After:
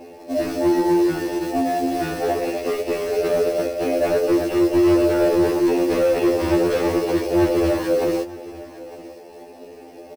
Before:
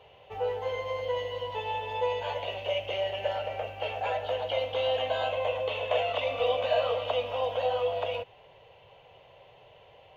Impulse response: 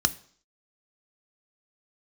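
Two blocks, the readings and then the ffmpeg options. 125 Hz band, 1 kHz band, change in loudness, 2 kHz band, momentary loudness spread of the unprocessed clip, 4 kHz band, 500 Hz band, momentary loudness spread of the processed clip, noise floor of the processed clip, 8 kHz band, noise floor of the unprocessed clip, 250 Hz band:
+12.0 dB, +4.5 dB, +10.5 dB, +5.5 dB, 6 LU, -0.5 dB, +9.5 dB, 9 LU, -41 dBFS, n/a, -56 dBFS, +36.0 dB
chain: -filter_complex "[0:a]lowpass=1.9k,equalizer=f=370:w=0.33:g=12.5,afreqshift=-170,asplit=2[a][b];[b]highpass=f=720:p=1,volume=23dB,asoftclip=type=tanh:threshold=-4.5dB[c];[a][c]amix=inputs=2:normalize=0,lowpass=f=1.3k:p=1,volume=-6dB,aeval=exprs='0.316*(abs(mod(val(0)/0.316+3,4)-2)-1)':c=same,acrusher=bits=4:mode=log:mix=0:aa=0.000001,aecho=1:1:908:0.119,asplit=2[d][e];[1:a]atrim=start_sample=2205,highshelf=f=2.2k:g=7[f];[e][f]afir=irnorm=-1:irlink=0,volume=-22dB[g];[d][g]amix=inputs=2:normalize=0,afftfilt=real='re*2*eq(mod(b,4),0)':imag='im*2*eq(mod(b,4),0)':win_size=2048:overlap=0.75,volume=-2.5dB"

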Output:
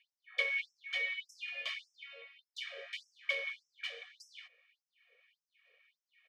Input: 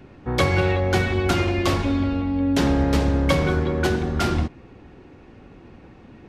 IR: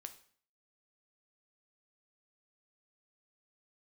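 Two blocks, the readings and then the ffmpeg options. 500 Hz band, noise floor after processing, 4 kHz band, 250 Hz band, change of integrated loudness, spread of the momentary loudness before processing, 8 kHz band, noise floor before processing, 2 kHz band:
-27.5 dB, under -85 dBFS, -10.5 dB, under -40 dB, -16.5 dB, 4 LU, -23.0 dB, -47 dBFS, -9.0 dB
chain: -filter_complex "[0:a]asplit=3[a][b][c];[a]bandpass=f=270:t=q:w=8,volume=0dB[d];[b]bandpass=f=2.29k:t=q:w=8,volume=-6dB[e];[c]bandpass=f=3.01k:t=q:w=8,volume=-9dB[f];[d][e][f]amix=inputs=3:normalize=0,aecho=1:1:1.7:1,afftfilt=real='re*gte(b*sr/1024,420*pow(5300/420,0.5+0.5*sin(2*PI*1.7*pts/sr)))':imag='im*gte(b*sr/1024,420*pow(5300/420,0.5+0.5*sin(2*PI*1.7*pts/sr)))':win_size=1024:overlap=0.75"

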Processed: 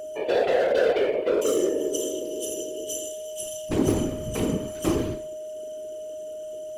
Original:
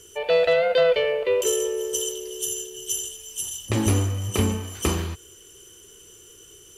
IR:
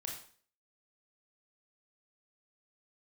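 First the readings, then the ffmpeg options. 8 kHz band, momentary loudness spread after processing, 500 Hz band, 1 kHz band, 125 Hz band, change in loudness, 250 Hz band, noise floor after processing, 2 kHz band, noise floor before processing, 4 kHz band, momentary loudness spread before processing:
-6.0 dB, 14 LU, -1.0 dB, -1.0 dB, -7.5 dB, -3.0 dB, +2.5 dB, -36 dBFS, -4.5 dB, -49 dBFS, -6.5 dB, 11 LU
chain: -filter_complex "[0:a]equalizer=f=330:w=1.1:g=11.5,flanger=delay=8:depth=8.3:regen=84:speed=0.9:shape=triangular,asplit=2[a][b];[1:a]atrim=start_sample=2205[c];[b][c]afir=irnorm=-1:irlink=0,volume=0dB[d];[a][d]amix=inputs=2:normalize=0,asoftclip=type=hard:threshold=-12.5dB,afftfilt=real='hypot(re,im)*cos(2*PI*random(0))':imag='hypot(re,im)*sin(2*PI*random(1))':win_size=512:overlap=0.75,aeval=exprs='val(0)+0.0224*sin(2*PI*620*n/s)':c=same"

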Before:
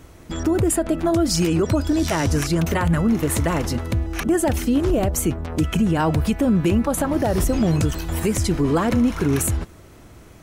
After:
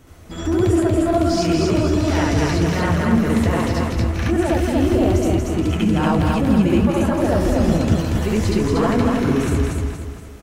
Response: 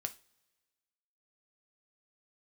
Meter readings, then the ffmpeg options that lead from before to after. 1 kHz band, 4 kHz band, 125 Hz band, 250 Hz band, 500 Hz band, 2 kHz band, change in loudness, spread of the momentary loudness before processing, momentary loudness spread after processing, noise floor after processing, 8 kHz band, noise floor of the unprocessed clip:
+3.0 dB, +1.0 dB, +2.5 dB, +2.5 dB, +3.0 dB, +3.0 dB, +2.5 dB, 5 LU, 4 LU, -36 dBFS, -6.0 dB, -45 dBFS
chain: -filter_complex "[0:a]acrossover=split=5500[a][b];[b]acompressor=threshold=-44dB:ratio=4:attack=1:release=60[c];[a][c]amix=inputs=2:normalize=0,flanger=delay=7.5:depth=9.5:regen=-41:speed=1.4:shape=triangular,aecho=1:1:235|470|705|940|1175:0.708|0.297|0.125|0.0525|0.022,asplit=2[d][e];[1:a]atrim=start_sample=2205,adelay=70[f];[e][f]afir=irnorm=-1:irlink=0,volume=4dB[g];[d][g]amix=inputs=2:normalize=0"

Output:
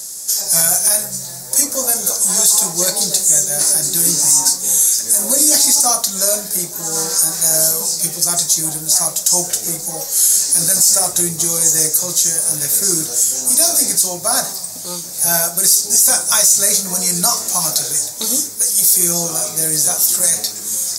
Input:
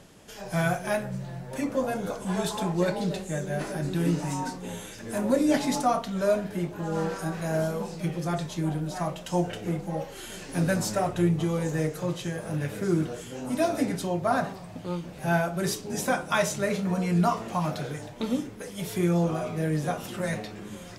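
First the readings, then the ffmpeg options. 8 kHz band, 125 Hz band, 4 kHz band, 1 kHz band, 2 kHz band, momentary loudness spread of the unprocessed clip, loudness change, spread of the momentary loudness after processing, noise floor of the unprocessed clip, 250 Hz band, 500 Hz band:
+30.5 dB, -4.0 dB, +20.0 dB, +3.0 dB, +3.5 dB, 10 LU, +16.0 dB, 7 LU, -43 dBFS, -2.5 dB, +1.0 dB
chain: -filter_complex "[0:a]lowshelf=f=360:g=-11,aexciter=amount=14.2:drive=8.7:freq=4.6k,asplit=2[a][b];[b]asoftclip=type=tanh:threshold=-7.5dB,volume=-11dB[c];[a][c]amix=inputs=2:normalize=0,alimiter=level_in=4.5dB:limit=-1dB:release=50:level=0:latency=1,volume=-1dB"

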